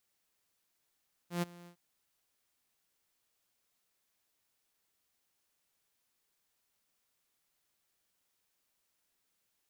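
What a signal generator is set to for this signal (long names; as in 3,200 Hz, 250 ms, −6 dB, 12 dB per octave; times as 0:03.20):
note with an ADSR envelope saw 174 Hz, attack 123 ms, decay 21 ms, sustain −22 dB, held 0.37 s, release 90 ms −26.5 dBFS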